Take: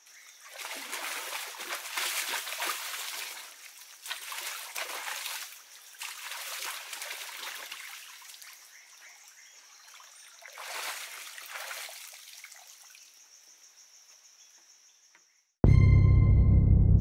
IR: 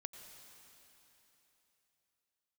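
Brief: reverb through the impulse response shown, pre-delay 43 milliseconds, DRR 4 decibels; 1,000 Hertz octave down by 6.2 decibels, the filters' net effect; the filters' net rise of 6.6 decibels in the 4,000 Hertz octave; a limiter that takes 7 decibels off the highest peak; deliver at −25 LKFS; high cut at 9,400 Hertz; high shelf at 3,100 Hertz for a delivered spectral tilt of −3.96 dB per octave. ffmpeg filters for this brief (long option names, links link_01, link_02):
-filter_complex "[0:a]lowpass=9400,equalizer=frequency=1000:width_type=o:gain=-9,highshelf=frequency=3100:gain=4.5,equalizer=frequency=4000:width_type=o:gain=5.5,alimiter=limit=-16dB:level=0:latency=1,asplit=2[link_01][link_02];[1:a]atrim=start_sample=2205,adelay=43[link_03];[link_02][link_03]afir=irnorm=-1:irlink=0,volume=0dB[link_04];[link_01][link_04]amix=inputs=2:normalize=0,volume=4.5dB"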